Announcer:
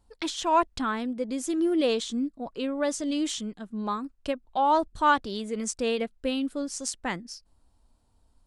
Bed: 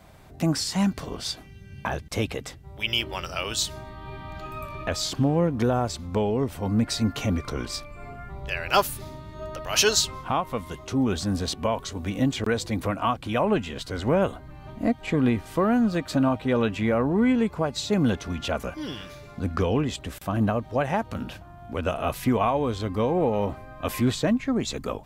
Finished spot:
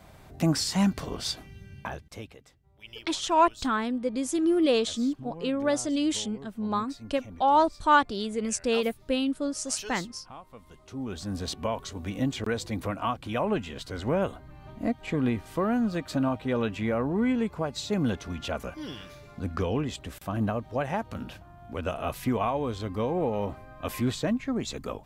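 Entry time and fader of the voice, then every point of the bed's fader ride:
2.85 s, +1.5 dB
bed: 1.62 s -0.5 dB
2.42 s -20 dB
10.48 s -20 dB
11.48 s -4.5 dB

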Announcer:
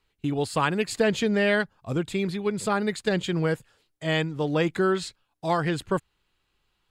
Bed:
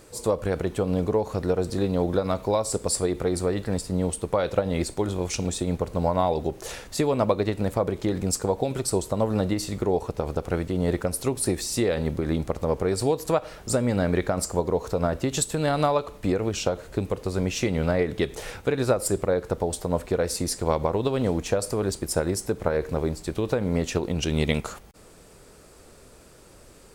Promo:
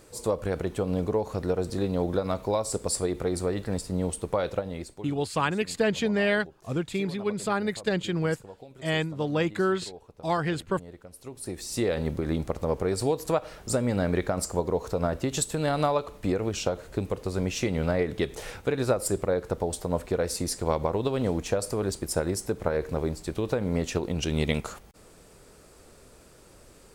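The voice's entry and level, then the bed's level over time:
4.80 s, -2.0 dB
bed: 4.45 s -3 dB
5.24 s -21 dB
11.07 s -21 dB
11.84 s -2.5 dB

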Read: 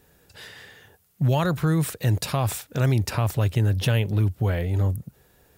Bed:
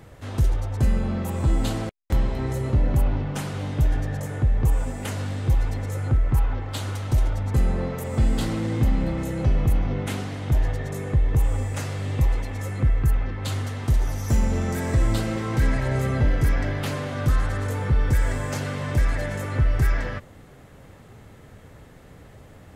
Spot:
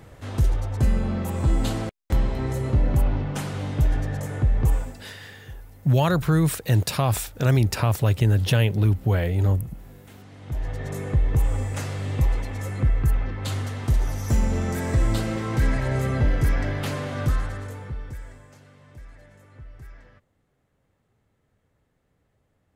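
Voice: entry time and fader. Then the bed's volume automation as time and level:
4.65 s, +2.0 dB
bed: 4.74 s 0 dB
5.18 s -20.5 dB
10.05 s -20.5 dB
10.89 s -0.5 dB
17.22 s -0.5 dB
18.56 s -23 dB

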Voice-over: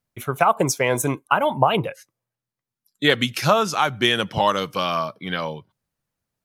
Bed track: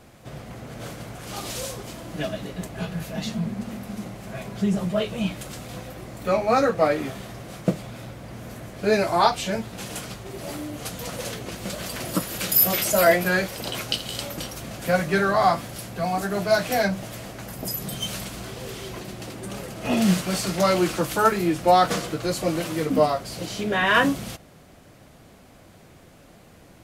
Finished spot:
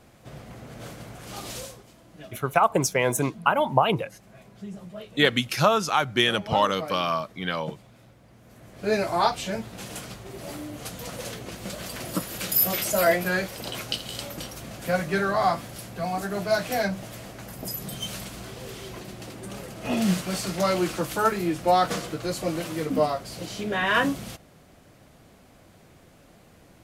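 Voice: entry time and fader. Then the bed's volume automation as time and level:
2.15 s, -2.5 dB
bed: 1.57 s -4 dB
1.87 s -15.5 dB
8.43 s -15.5 dB
8.92 s -3.5 dB

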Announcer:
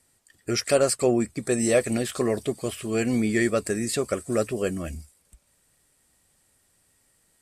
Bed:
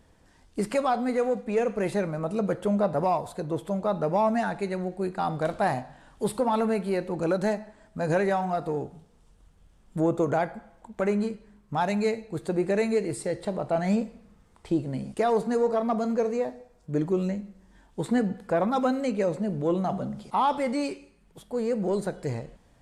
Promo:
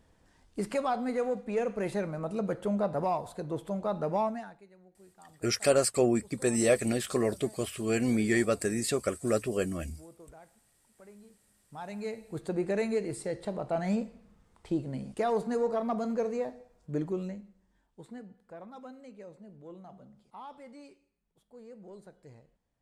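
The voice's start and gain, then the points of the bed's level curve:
4.95 s, -3.5 dB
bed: 4.22 s -5 dB
4.68 s -28 dB
11.2 s -28 dB
12.37 s -5 dB
16.94 s -5 dB
18.26 s -22 dB

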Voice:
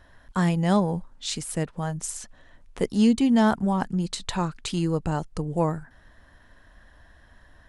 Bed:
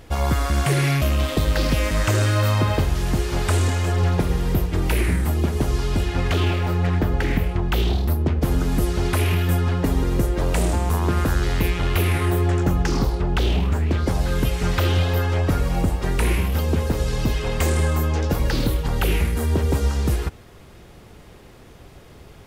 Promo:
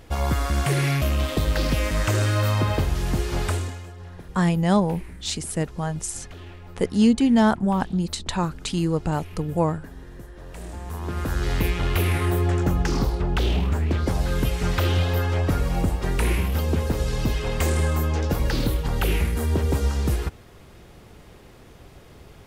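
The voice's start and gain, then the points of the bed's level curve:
4.00 s, +2.0 dB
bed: 3.45 s -2.5 dB
3.96 s -21 dB
10.37 s -21 dB
11.52 s -2 dB

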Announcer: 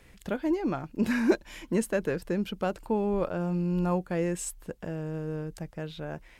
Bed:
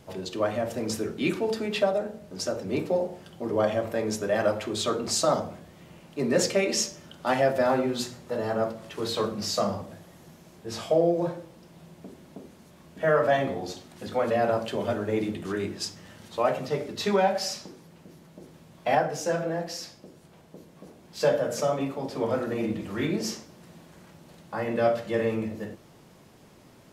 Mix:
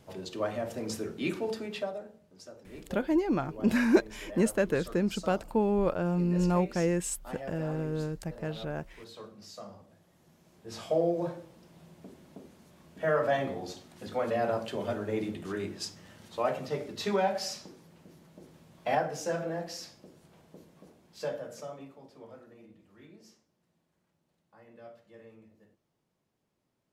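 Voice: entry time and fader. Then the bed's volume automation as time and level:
2.65 s, +1.0 dB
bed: 1.49 s -5.5 dB
2.4 s -19 dB
9.7 s -19 dB
10.96 s -5 dB
20.61 s -5 dB
22.67 s -26.5 dB

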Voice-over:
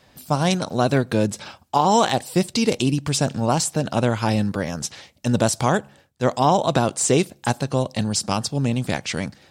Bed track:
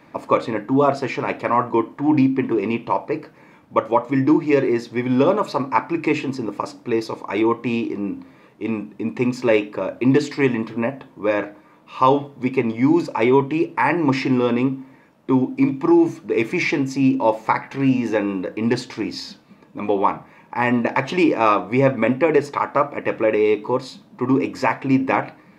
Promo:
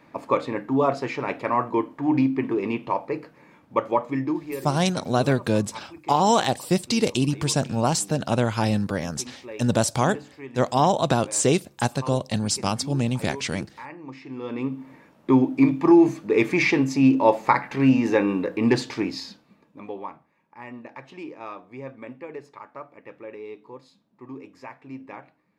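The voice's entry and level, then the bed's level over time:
4.35 s, -2.0 dB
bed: 4.04 s -4.5 dB
4.82 s -21.5 dB
14.21 s -21.5 dB
14.91 s 0 dB
18.98 s 0 dB
20.3 s -21 dB

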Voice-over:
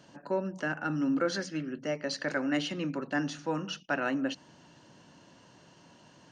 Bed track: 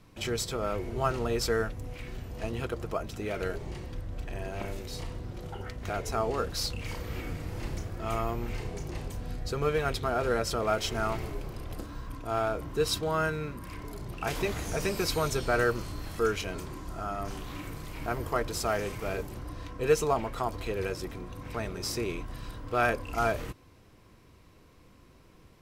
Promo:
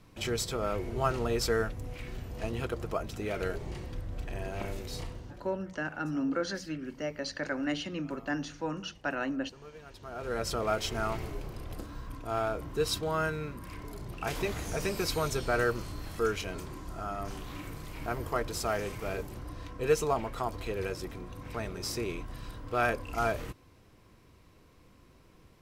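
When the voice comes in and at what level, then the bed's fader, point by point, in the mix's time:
5.15 s, -2.5 dB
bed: 5 s -0.5 dB
5.88 s -21.5 dB
9.86 s -21.5 dB
10.45 s -2 dB

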